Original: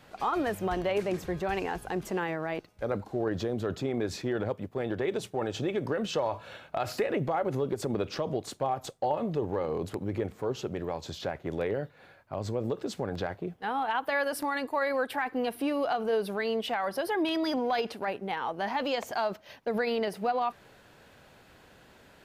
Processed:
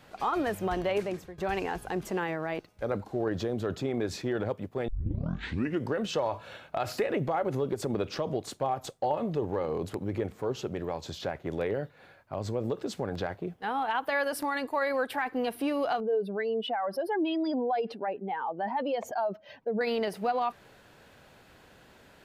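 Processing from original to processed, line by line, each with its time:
0.97–1.38 s: fade out, to -21 dB
4.88 s: tape start 1.04 s
16.00–19.81 s: spectral contrast enhancement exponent 1.7

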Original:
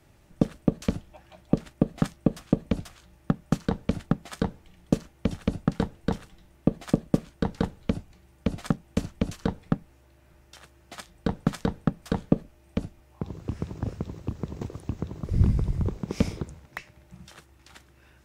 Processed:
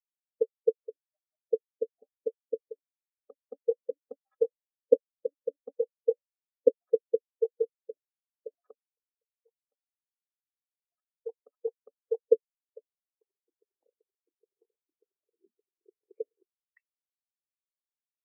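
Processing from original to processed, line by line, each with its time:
1.68–2.61 s: phase dispersion highs, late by 53 ms, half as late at 2 kHz
3.31–6.69 s: comb 3.7 ms, depth 76%
8.86–12.26 s: fade in, from -17 dB
whole clip: low-pass that closes with the level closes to 540 Hz, closed at -21 dBFS; high-pass 410 Hz 24 dB/octave; spectral contrast expander 4:1; trim +8 dB

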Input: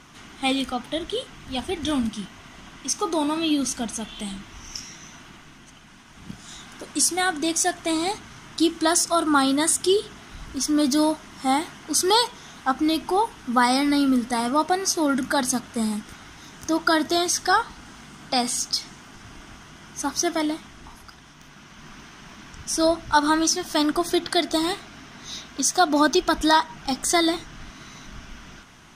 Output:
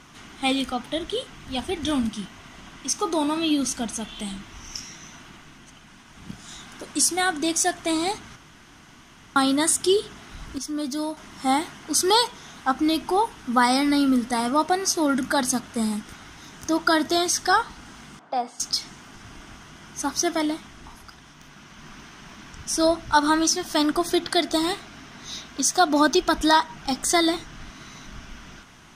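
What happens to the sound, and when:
8.36–9.36 s: room tone
10.58–11.17 s: gain -8 dB
18.19–18.60 s: band-pass filter 710 Hz, Q 1.4

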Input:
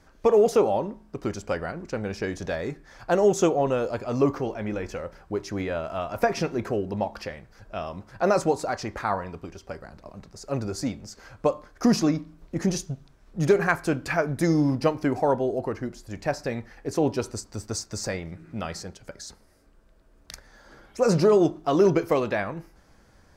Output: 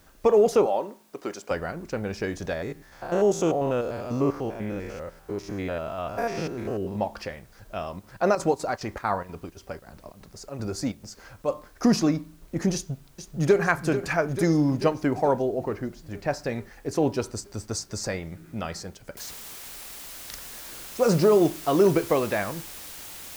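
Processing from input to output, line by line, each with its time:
0.66–1.51 s: high-pass 350 Hz
2.53–6.96 s: spectrogram pixelated in time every 100 ms
7.93–11.47 s: square tremolo 6.1 Hz -> 1.8 Hz, depth 65%, duty 75%
12.74–13.61 s: echo throw 440 ms, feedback 70%, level -10 dB
15.42–16.31 s: distance through air 100 m
19.17 s: noise floor step -63 dB -41 dB

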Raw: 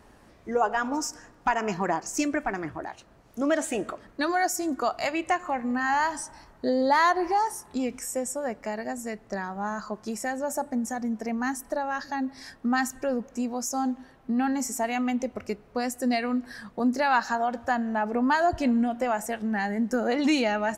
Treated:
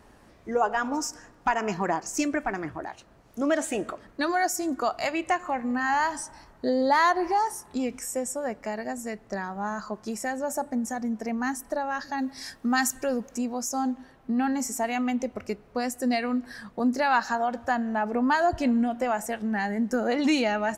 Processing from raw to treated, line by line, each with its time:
12.18–13.38 s: treble shelf 3.5 kHz +9.5 dB

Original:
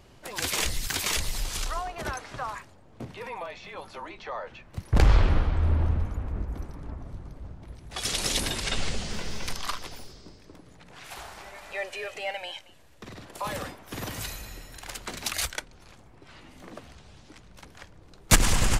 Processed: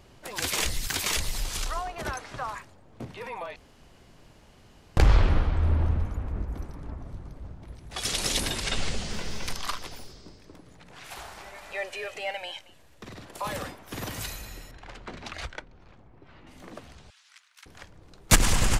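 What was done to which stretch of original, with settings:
3.56–4.97 s: room tone
14.71–16.47 s: tape spacing loss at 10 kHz 26 dB
17.10–17.66 s: high-pass 1.3 kHz 24 dB/octave

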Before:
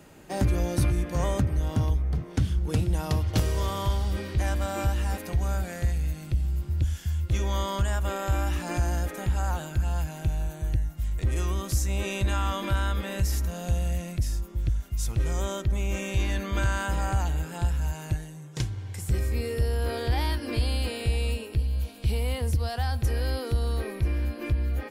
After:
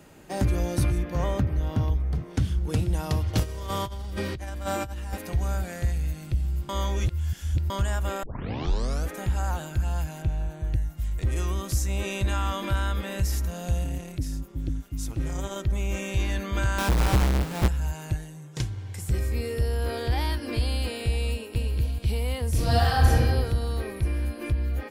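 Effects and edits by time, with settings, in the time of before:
0.98–2.00 s: peaking EQ 8.6 kHz -11.5 dB 1 oct
3.43–5.13 s: compressor with a negative ratio -32 dBFS
6.69–7.70 s: reverse
8.23 s: tape start 0.88 s
10.22–10.74 s: low-pass 2.9 kHz 6 dB/octave
13.84–15.56 s: AM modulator 210 Hz, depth 55%
16.78–17.68 s: square wave that keeps the level
21.31–21.74 s: echo throw 240 ms, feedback 15%, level -1.5 dB
22.49–23.14 s: reverb throw, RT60 1.4 s, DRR -9 dB
23.96–24.51 s: peaking EQ 9.7 kHz +11 dB 0.29 oct

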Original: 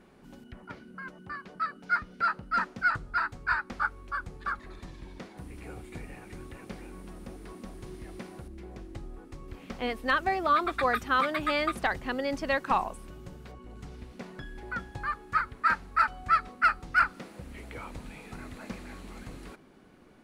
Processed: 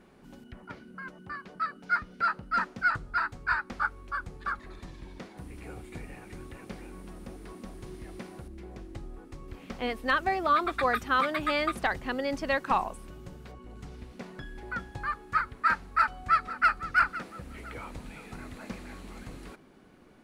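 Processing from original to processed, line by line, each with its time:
15.80–16.71 s: echo throw 510 ms, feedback 35%, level -14.5 dB

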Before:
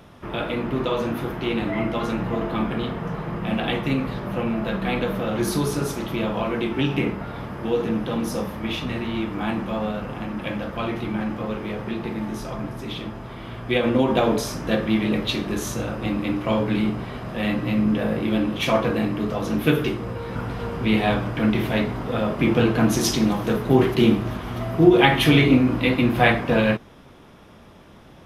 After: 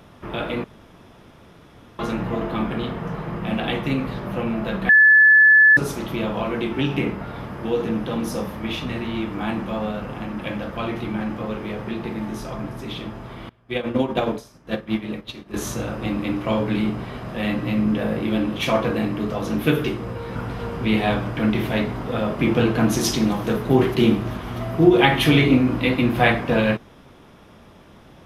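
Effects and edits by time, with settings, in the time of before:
0.64–1.99 s: room tone
4.89–5.77 s: bleep 1.73 kHz -8.5 dBFS
13.49–15.54 s: upward expansion 2.5:1, over -32 dBFS

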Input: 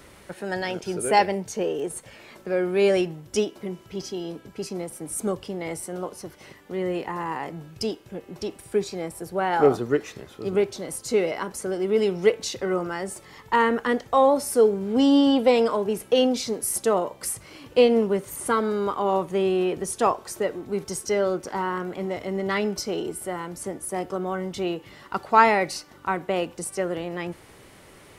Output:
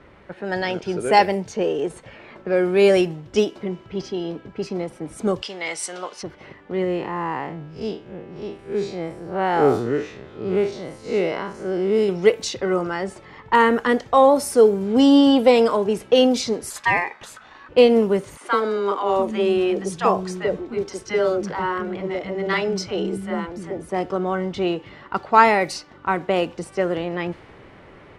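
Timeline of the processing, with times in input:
5.42–6.23 s: frequency weighting ITU-R 468
6.84–12.09 s: spectral blur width 110 ms
16.70–17.69 s: ring modulator 1.4 kHz
18.37–23.89 s: three bands offset in time highs, mids, lows 40/700 ms, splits 240/810 Hz
whole clip: level-controlled noise filter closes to 2.1 kHz, open at -17.5 dBFS; level rider gain up to 4 dB; trim +1 dB

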